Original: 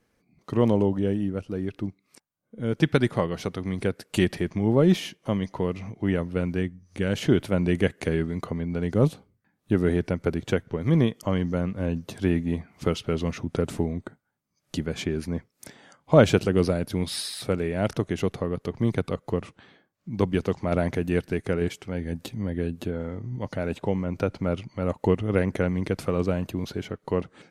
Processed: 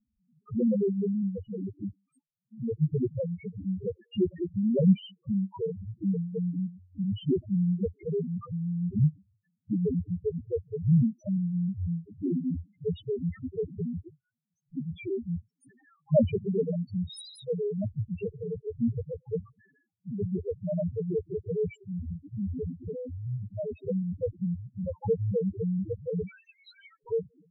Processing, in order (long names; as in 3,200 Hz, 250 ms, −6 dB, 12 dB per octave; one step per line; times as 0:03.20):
0:26.27–0:27.00: inverse Chebyshev high-pass filter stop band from 500 Hz, stop band 60 dB
spectral peaks only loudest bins 1
level +5 dB